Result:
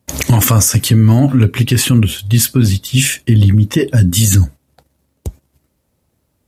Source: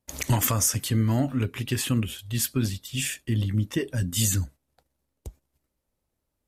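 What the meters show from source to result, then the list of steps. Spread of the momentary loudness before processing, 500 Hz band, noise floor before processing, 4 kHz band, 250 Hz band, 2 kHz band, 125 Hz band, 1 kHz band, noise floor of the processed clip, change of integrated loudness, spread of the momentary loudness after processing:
6 LU, +12.5 dB, −81 dBFS, +12.5 dB, +14.0 dB, +12.5 dB, +16.0 dB, can't be measured, −66 dBFS, +14.0 dB, 5 LU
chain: high-pass filter 100 Hz 12 dB per octave
low-shelf EQ 180 Hz +11 dB
boost into a limiter +15 dB
level −1 dB

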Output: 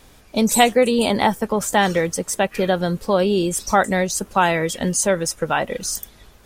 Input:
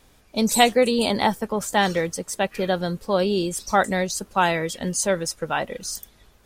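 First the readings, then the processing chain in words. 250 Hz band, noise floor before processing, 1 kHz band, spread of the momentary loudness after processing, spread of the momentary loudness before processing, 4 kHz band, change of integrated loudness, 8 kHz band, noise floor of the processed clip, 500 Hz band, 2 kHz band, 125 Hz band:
+3.5 dB, −56 dBFS, +3.0 dB, 7 LU, 9 LU, +1.0 dB, +3.0 dB, +4.5 dB, −49 dBFS, +3.5 dB, +3.0 dB, +4.0 dB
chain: dynamic equaliser 4,400 Hz, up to −6 dB, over −43 dBFS, Q 2.6
in parallel at +2 dB: downward compressor, threshold −26 dBFS, peak gain reduction 14.5 dB

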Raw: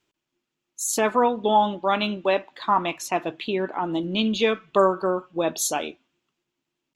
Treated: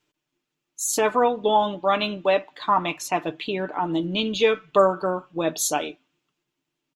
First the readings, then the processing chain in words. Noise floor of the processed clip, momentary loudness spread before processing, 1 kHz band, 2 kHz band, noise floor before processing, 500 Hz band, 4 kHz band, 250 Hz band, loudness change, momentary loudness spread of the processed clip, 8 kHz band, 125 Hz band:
−82 dBFS, 7 LU, 0.0 dB, +0.5 dB, −83 dBFS, +1.0 dB, +1.0 dB, −1.5 dB, +0.5 dB, 8 LU, +1.0 dB, +0.5 dB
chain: comb filter 6.7 ms, depth 45%

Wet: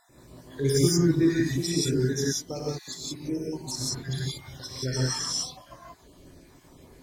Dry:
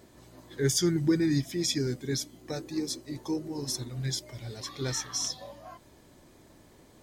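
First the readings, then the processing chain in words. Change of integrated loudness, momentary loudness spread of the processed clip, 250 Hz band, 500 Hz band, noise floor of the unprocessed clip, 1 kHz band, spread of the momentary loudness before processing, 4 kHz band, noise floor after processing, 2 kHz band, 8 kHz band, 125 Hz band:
+3.5 dB, 13 LU, +3.0 dB, +4.5 dB, −57 dBFS, +2.5 dB, 14 LU, +2.5 dB, −55 dBFS, +3.5 dB, +2.5 dB, +5.0 dB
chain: time-frequency cells dropped at random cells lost 57%
reverb whose tail is shaped and stops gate 200 ms rising, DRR −5.5 dB

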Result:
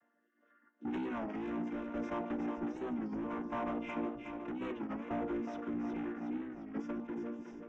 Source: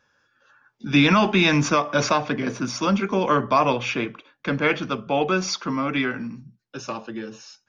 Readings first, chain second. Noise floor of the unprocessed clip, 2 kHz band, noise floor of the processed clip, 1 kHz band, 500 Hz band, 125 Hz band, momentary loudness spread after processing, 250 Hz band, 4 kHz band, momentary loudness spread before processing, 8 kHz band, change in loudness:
−69 dBFS, −24.0 dB, −76 dBFS, −19.5 dB, −17.0 dB, −24.0 dB, 4 LU, −13.0 dB, −32.0 dB, 17 LU, can't be measured, −17.5 dB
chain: channel vocoder with a chord as carrier major triad, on A#3
downward compressor 4 to 1, threshold −32 dBFS, peak gain reduction 18 dB
hard clipping −35 dBFS, distortion −7 dB
rotating-speaker cabinet horn 0.75 Hz, later 5 Hz, at 0:06.27
moving average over 10 samples
echo with a time of its own for lows and highs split 340 Hz, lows 625 ms, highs 366 ms, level −6 dB
wow of a warped record 33 1/3 rpm, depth 160 cents
level +1 dB

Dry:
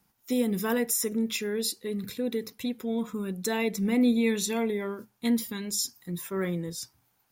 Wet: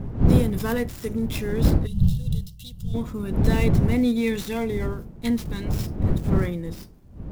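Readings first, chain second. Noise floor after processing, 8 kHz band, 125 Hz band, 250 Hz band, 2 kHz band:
−44 dBFS, −10.0 dB, +17.5 dB, +3.5 dB, +1.0 dB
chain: gap after every zero crossing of 0.064 ms
wind on the microphone 150 Hz −25 dBFS
gain on a spectral selection 0:01.86–0:02.94, 210–2,700 Hz −21 dB
level +1.5 dB

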